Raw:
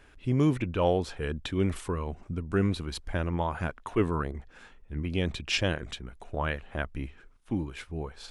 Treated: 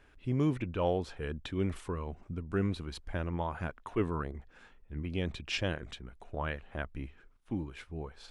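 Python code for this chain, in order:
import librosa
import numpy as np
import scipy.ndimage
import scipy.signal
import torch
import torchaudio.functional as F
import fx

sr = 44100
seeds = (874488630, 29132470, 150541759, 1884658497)

y = fx.high_shelf(x, sr, hz=5500.0, db=-6.0)
y = F.gain(torch.from_numpy(y), -5.0).numpy()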